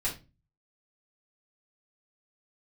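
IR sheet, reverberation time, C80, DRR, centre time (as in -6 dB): 0.30 s, 17.0 dB, -6.5 dB, 20 ms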